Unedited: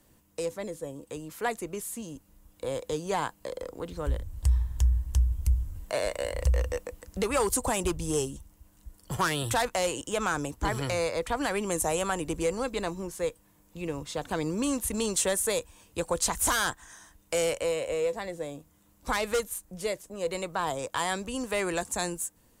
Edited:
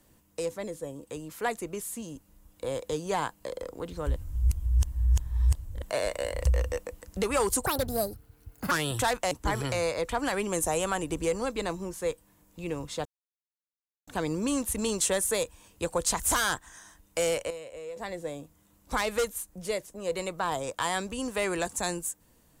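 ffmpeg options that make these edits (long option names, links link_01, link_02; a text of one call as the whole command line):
ffmpeg -i in.wav -filter_complex "[0:a]asplit=9[link_01][link_02][link_03][link_04][link_05][link_06][link_07][link_08][link_09];[link_01]atrim=end=4.162[link_10];[link_02]atrim=start=4.158:end=5.822,asetpts=PTS-STARTPTS,areverse[link_11];[link_03]atrim=start=5.818:end=7.664[link_12];[link_04]atrim=start=7.66:end=9.23,asetpts=PTS-STARTPTS,asetrate=65709,aresample=44100[link_13];[link_05]atrim=start=9.226:end=9.832[link_14];[link_06]atrim=start=10.488:end=14.23,asetpts=PTS-STARTPTS,afade=type=out:start_time=3.738:duration=0.004:curve=hsin,apad=pad_dur=1.02[link_15];[link_07]atrim=start=14.23:end=17.66,asetpts=PTS-STARTPTS,afade=type=in:duration=0.004:curve=hsin,afade=type=out:start_time=3.11:duration=0.32:curve=log:silence=0.266073[link_16];[link_08]atrim=start=17.66:end=18.12,asetpts=PTS-STARTPTS,volume=-11.5dB[link_17];[link_09]atrim=start=18.12,asetpts=PTS-STARTPTS,afade=type=in:duration=0.32:curve=log:silence=0.266073[link_18];[link_10][link_11]acrossfade=duration=0.004:curve1=hsin:curve2=hsin[link_19];[link_19][link_12]acrossfade=duration=0.004:curve1=hsin:curve2=hsin[link_20];[link_20][link_13]acrossfade=duration=0.004:curve1=hsin:curve2=hsin[link_21];[link_21][link_14]acrossfade=duration=0.004:curve1=hsin:curve2=hsin[link_22];[link_15][link_16][link_17][link_18]concat=n=4:v=0:a=1[link_23];[link_22][link_23]acrossfade=duration=0.004:curve1=hsin:curve2=hsin" out.wav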